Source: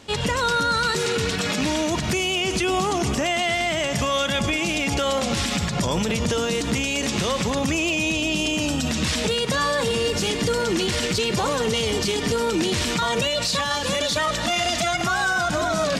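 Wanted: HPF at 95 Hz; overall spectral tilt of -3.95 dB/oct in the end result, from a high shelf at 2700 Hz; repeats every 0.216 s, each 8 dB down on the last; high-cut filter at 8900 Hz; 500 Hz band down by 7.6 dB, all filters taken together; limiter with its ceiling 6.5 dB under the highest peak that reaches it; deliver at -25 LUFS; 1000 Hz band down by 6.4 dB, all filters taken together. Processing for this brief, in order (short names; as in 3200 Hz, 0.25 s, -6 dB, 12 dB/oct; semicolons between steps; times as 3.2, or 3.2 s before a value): HPF 95 Hz; LPF 8900 Hz; bell 500 Hz -8 dB; bell 1000 Hz -5 dB; high shelf 2700 Hz -7 dB; limiter -21.5 dBFS; feedback echo 0.216 s, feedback 40%, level -8 dB; gain +3.5 dB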